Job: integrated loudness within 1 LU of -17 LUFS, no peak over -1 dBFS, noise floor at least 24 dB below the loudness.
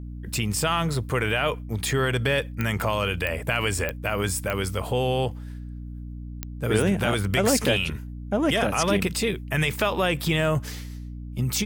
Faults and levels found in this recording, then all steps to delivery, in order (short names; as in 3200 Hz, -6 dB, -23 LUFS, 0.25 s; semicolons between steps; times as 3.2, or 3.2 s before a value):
clicks 5; hum 60 Hz; harmonics up to 300 Hz; hum level -33 dBFS; loudness -24.5 LUFS; peak -9.0 dBFS; loudness target -17.0 LUFS
-> de-click; notches 60/120/180/240/300 Hz; gain +7.5 dB